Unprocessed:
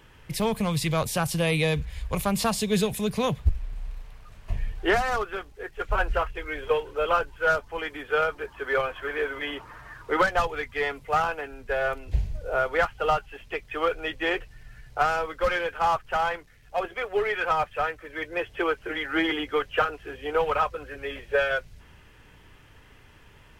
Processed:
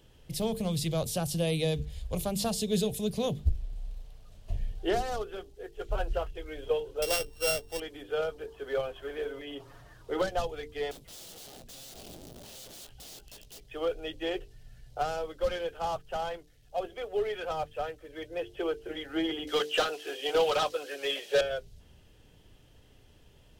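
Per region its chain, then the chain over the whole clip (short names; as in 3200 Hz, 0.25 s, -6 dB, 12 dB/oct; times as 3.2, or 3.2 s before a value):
7.02–7.8 sample sorter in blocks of 16 samples + three-band squash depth 40%
9.31–9.83 comb 7.3 ms, depth 77% + compressor 3:1, threshold -32 dBFS
10.91–13.61 compressor 16:1, threshold -31 dBFS + wrapped overs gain 38 dB + doubler 17 ms -10 dB
19.47–21.41 HPF 320 Hz + high shelf 2800 Hz +8 dB + overdrive pedal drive 17 dB, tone 6600 Hz, clips at -9.5 dBFS
whole clip: band shelf 1500 Hz -11.5 dB; notches 50/100/150/200/250/300/350/400/450 Hz; gain -3.5 dB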